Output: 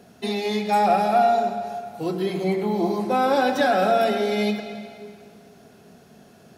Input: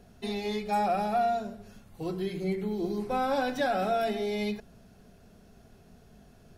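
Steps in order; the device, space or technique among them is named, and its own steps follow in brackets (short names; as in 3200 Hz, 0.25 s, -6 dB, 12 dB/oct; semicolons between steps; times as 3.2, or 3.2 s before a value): 2.27–3.02 band shelf 850 Hz +9.5 dB 1.1 oct; filtered reverb send (on a send: HPF 210 Hz + LPF 8000 Hz + reverb RT60 2.2 s, pre-delay 0.101 s, DRR 8 dB); on the sum: HPF 170 Hz 12 dB/oct; gain +8 dB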